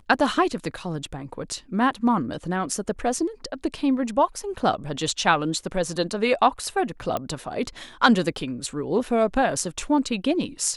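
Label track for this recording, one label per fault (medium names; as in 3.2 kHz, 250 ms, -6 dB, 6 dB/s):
7.170000	7.170000	pop -13 dBFS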